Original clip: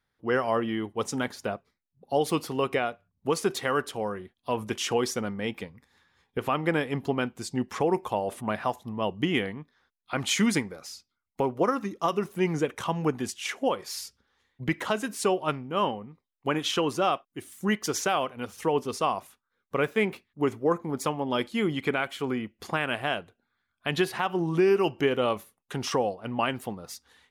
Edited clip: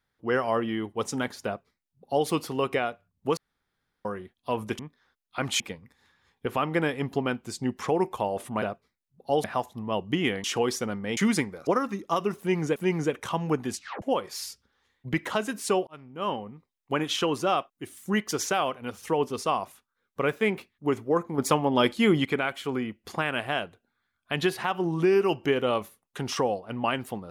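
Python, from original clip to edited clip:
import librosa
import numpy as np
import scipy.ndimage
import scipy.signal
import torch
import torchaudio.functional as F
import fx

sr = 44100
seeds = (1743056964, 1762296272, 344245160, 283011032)

y = fx.edit(x, sr, fx.duplicate(start_s=1.45, length_s=0.82, to_s=8.54),
    fx.room_tone_fill(start_s=3.37, length_s=0.68),
    fx.swap(start_s=4.79, length_s=0.73, other_s=9.54, other_length_s=0.81),
    fx.cut(start_s=10.85, length_s=0.74),
    fx.repeat(start_s=12.31, length_s=0.37, count=2),
    fx.tape_stop(start_s=13.3, length_s=0.27),
    fx.fade_in_span(start_s=15.42, length_s=0.6),
    fx.clip_gain(start_s=20.93, length_s=0.87, db=5.5), tone=tone)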